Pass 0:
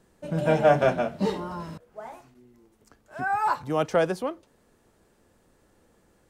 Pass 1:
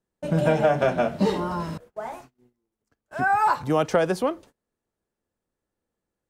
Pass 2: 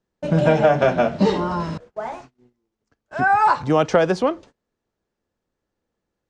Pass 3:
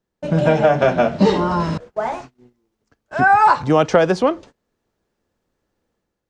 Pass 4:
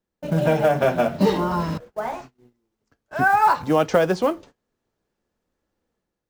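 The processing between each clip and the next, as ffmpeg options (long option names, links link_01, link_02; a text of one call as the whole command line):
ffmpeg -i in.wav -af "agate=range=-28dB:threshold=-51dB:ratio=16:detection=peak,acompressor=threshold=-23dB:ratio=6,volume=6.5dB" out.wav
ffmpeg -i in.wav -af "lowpass=frequency=6800:width=0.5412,lowpass=frequency=6800:width=1.3066,volume=4.5dB" out.wav
ffmpeg -i in.wav -af "dynaudnorm=framelen=100:gausssize=7:maxgain=6.5dB" out.wav
ffmpeg -i in.wav -af "acrusher=bits=7:mode=log:mix=0:aa=0.000001,flanger=delay=3.6:depth=4.3:regen=-70:speed=0.53:shape=sinusoidal" out.wav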